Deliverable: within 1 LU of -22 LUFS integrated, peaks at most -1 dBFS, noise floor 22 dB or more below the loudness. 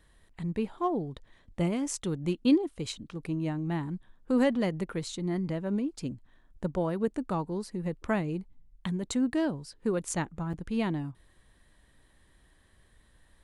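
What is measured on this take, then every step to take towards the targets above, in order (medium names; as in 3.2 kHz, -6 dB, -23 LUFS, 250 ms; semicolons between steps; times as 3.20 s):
dropouts 1; longest dropout 6.3 ms; loudness -31.5 LUFS; peak level -14.0 dBFS; loudness target -22.0 LUFS
-> interpolate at 10.53 s, 6.3 ms; trim +9.5 dB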